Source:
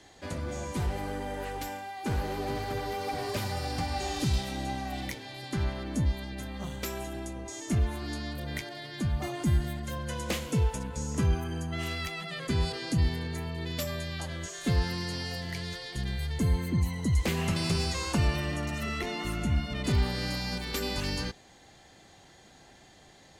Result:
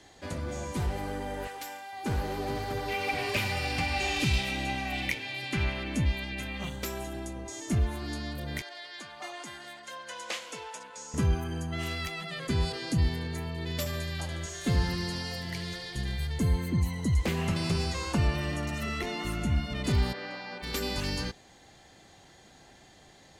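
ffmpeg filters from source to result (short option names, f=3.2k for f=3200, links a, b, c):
-filter_complex "[0:a]asettb=1/sr,asplit=3[a][b][c];[a]atrim=end=1.474[d];[b]atrim=start=1.47:end=1.93,asetpts=PTS-STARTPTS,afade=t=in:d=0.004:c=qsin,afade=t=out:st=0.456:d=0.004:c=qsin,highpass=f=870:p=1[e];[c]atrim=start=1.926[f];[d][e]acrossfade=d=0.004:c1=hsin:c2=qsin[g];[g][f]acrossfade=d=0.004:c1=qsin:c2=hsin,asettb=1/sr,asplit=3[h][i][j];[h]atrim=end=2.884[k];[i]atrim=start=2.88:end=6.7,asetpts=PTS-STARTPTS,afade=t=in:d=0.004:c=qsin,afade=t=out:st=3.816:d=0.004:c=qsin,equalizer=f=2.5k:t=o:w=0.72:g=14.5[l];[j]atrim=start=6.696[m];[k][l]acrossfade=d=0.004:c1=hsin:c2=qsin[n];[n][m]acrossfade=d=0.004:c1=qsin:c2=hsin,asettb=1/sr,asplit=3[o][p][q];[o]atrim=end=8.624[r];[p]atrim=start=8.62:end=11.14,asetpts=PTS-STARTPTS,afade=t=in:d=0.004:c=qsin,afade=t=out:st=2.516:d=0.004:c=qsin,highpass=730,lowpass=7.7k[s];[q]atrim=start=11.136[t];[r][s]acrossfade=d=0.004:c1=hsin:c2=qsin[u];[u][t]acrossfade=d=0.004:c1=qsin:c2=hsin,asettb=1/sr,asplit=3[v][w][x];[v]atrim=end=13.604[y];[w]atrim=start=13.6:end=16.27,asetpts=PTS-STARTPTS,afade=t=in:d=0.004:c=qsin,afade=t=out:st=2.666:d=0.004:c=qsin,aecho=1:1:74|148|222|296|370|444|518:0.282|0.166|0.0981|0.0579|0.0342|0.0201|0.0119,atrim=end_sample=117747[z];[x]atrim=start=16.266[aa];[y][z]acrossfade=d=0.004:c1=hsin:c2=qsin[ab];[ab][aa]acrossfade=d=0.004:c1=qsin:c2=hsin,asettb=1/sr,asplit=3[ac][ad][ae];[ac]atrim=end=17.144[af];[ad]atrim=start=17.14:end=18.41,asetpts=PTS-STARTPTS,afade=t=in:d=0.004:c=qsin,afade=t=out:st=1.266:d=0.004:c=qsin,highshelf=f=4k:g=-5[ag];[ae]atrim=start=18.406[ah];[af][ag]acrossfade=d=0.004:c1=hsin:c2=qsin[ai];[ai][ah]acrossfade=d=0.004:c1=qsin:c2=hsin,asplit=3[aj][ak][al];[aj]afade=t=out:st=20.12:d=0.02[am];[ak]highpass=400,lowpass=2.4k,afade=t=in:st=20.12:d=0.02,afade=t=out:st=20.62:d=0.02[an];[al]afade=t=in:st=20.62:d=0.02[ao];[am][an][ao]amix=inputs=3:normalize=0"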